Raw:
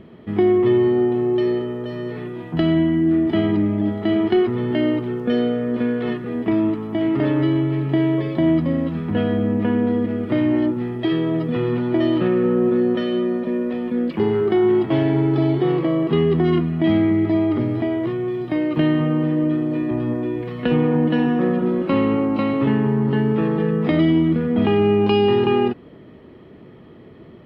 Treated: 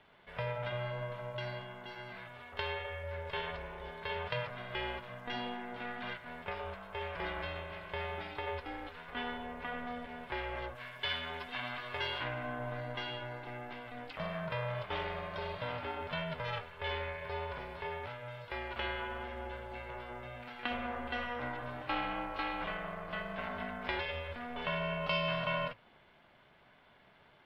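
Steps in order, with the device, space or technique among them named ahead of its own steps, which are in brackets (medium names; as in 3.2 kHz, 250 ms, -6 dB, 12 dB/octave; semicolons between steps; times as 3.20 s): 10.75–12.24 s: tilt shelf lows -5.5 dB, about 810 Hz; high-pass 920 Hz 12 dB/octave; alien voice (ring modulator 240 Hz; flange 1.6 Hz, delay 3.4 ms, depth 2.9 ms, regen -81%); trim +1 dB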